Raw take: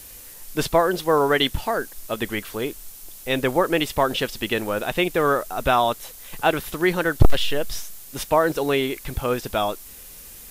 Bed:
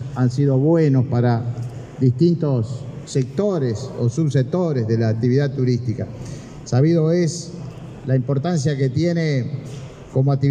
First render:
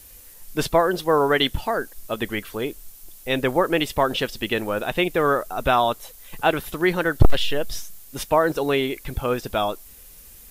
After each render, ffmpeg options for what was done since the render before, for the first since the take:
-af "afftdn=nr=6:nf=-42"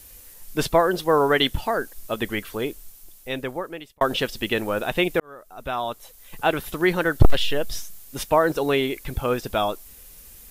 -filter_complex "[0:a]asplit=3[a][b][c];[a]atrim=end=4.01,asetpts=PTS-STARTPTS,afade=t=out:st=2.65:d=1.36[d];[b]atrim=start=4.01:end=5.2,asetpts=PTS-STARTPTS,afade=t=in:d=0.004:c=hsin,afade=t=out:st=1.186:d=0.004:c=hsin[e];[c]atrim=start=5.2,asetpts=PTS-STARTPTS,afade=t=in:d=1.54[f];[d][e][f]concat=n=3:v=0:a=1"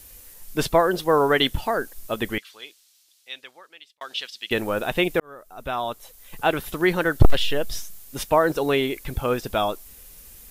-filter_complex "[0:a]asettb=1/sr,asplit=3[a][b][c];[a]atrim=end=2.384[d];[b]atrim=start=2.38:end=4.51,asetpts=PTS-STARTPTS,afade=t=in:d=0.004:c=qsin,afade=t=out:st=2.126:d=0.004:c=qsin,bandpass=f=4.1k:t=q:w=1.4[e];[c]atrim=start=4.506[f];[d][e]acrossfade=d=0.004:c1=hsin:c2=qsin[g];[g][f]acrossfade=d=0.004:c1=qsin:c2=hsin"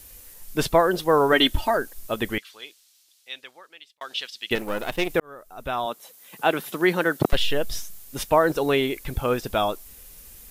-filter_complex "[0:a]asettb=1/sr,asplit=3[a][b][c];[a]atrim=end=1.324[d];[b]atrim=start=1.32:end=1.77,asetpts=PTS-STARTPTS,afade=t=in:d=0.004:c=qsin,afade=t=out:st=0.446:d=0.004:c=qsin,aecho=1:1:3.2:0.65,atrim=end_sample=19845[e];[c]atrim=start=1.766[f];[d][e]acrossfade=d=0.004:c1=hsin:c2=qsin[g];[g][f]acrossfade=d=0.004:c1=qsin:c2=hsin,asettb=1/sr,asplit=3[h][i][j];[h]atrim=end=4.554[k];[i]atrim=start=4.55:end=5.1,asetpts=PTS-STARTPTS,afade=t=in:d=0.004:c=qsin,afade=t=out:st=0.546:d=0.004:c=qsin,aeval=exprs='if(lt(val(0),0),0.251*val(0),val(0))':c=same[l];[j]atrim=start=5.096[m];[k][l]acrossfade=d=0.004:c1=hsin:c2=qsin[n];[n][m]acrossfade=d=0.004:c1=qsin:c2=hsin,asettb=1/sr,asplit=3[o][p][q];[o]atrim=end=5.864[r];[p]atrim=start=5.86:end=7.33,asetpts=PTS-STARTPTS,afade=t=in:d=0.004:c=qsin,afade=t=out:st=1.466:d=0.004:c=qsin,highpass=f=160:w=0.5412,highpass=f=160:w=1.3066[s];[q]atrim=start=7.326[t];[r][s]acrossfade=d=0.004:c1=hsin:c2=qsin[u];[u][t]acrossfade=d=0.004:c1=qsin:c2=hsin"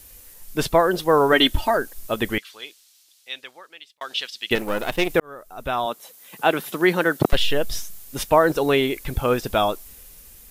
-af "dynaudnorm=f=170:g=9:m=3.5dB"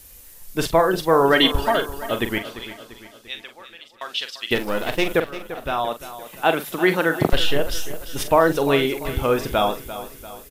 -filter_complex "[0:a]asplit=2[a][b];[b]adelay=43,volume=-9.5dB[c];[a][c]amix=inputs=2:normalize=0,aecho=1:1:344|688|1032|1376|1720:0.211|0.104|0.0507|0.0249|0.0122"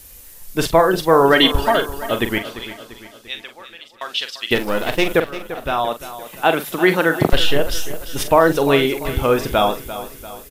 -af "volume=3.5dB,alimiter=limit=-1dB:level=0:latency=1"

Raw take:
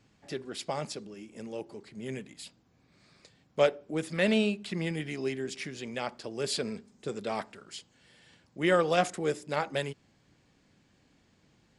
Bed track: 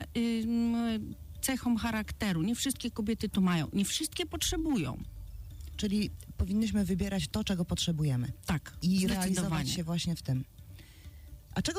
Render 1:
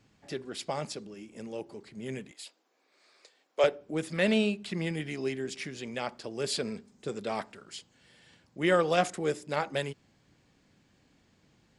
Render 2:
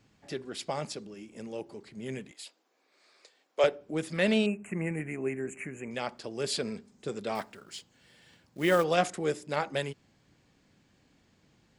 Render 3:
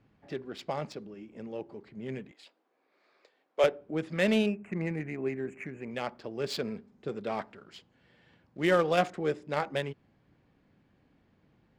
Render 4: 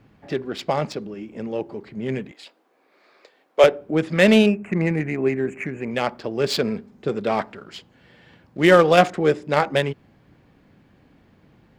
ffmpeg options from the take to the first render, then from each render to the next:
-filter_complex "[0:a]asettb=1/sr,asplit=3[a][b][c];[a]atrim=end=2.314[d];[b]atrim=start=2.31:end=3.64,asetpts=PTS-STARTPTS,afade=t=in:d=0.004:c=qsin,afade=t=out:st=1.326:d=0.004:c=qsin,highpass=f=380:w=0.5412,highpass=f=380:w=1.3066[e];[c]atrim=start=3.636[f];[d][e]acrossfade=d=0.004:c1=hsin:c2=qsin[g];[g][f]acrossfade=d=0.004:c1=qsin:c2=hsin"
-filter_complex "[0:a]asettb=1/sr,asplit=3[a][b][c];[a]atrim=end=4.464[d];[b]atrim=start=4.46:end=5.91,asetpts=PTS-STARTPTS,afade=t=in:d=0.004:c=qsin,afade=t=out:st=1.446:d=0.004:c=qsin,asuperstop=centerf=4300:order=12:qfactor=1[e];[c]atrim=start=5.906[f];[d][e]acrossfade=d=0.004:c1=hsin:c2=qsin[g];[g][f]acrossfade=d=0.004:c1=qsin:c2=hsin,asettb=1/sr,asplit=3[h][i][j];[h]atrim=end=7.354[k];[i]atrim=start=7.35:end=8.84,asetpts=PTS-STARTPTS,afade=t=in:d=0.004:c=qsin,afade=t=out:st=1.486:d=0.004:c=qsin,acrusher=bits=5:mode=log:mix=0:aa=0.000001[l];[j]atrim=start=8.836[m];[k][l]acrossfade=d=0.004:c1=hsin:c2=qsin[n];[n][m]acrossfade=d=0.004:c1=qsin:c2=hsin"
-af "adynamicsmooth=sensitivity=4:basefreq=2.5k"
-af "volume=11.5dB,alimiter=limit=-2dB:level=0:latency=1"

